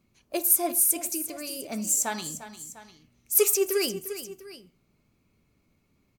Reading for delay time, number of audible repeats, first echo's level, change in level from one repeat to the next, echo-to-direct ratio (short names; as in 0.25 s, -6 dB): 0.35 s, 2, -13.0 dB, -4.5 dB, -11.5 dB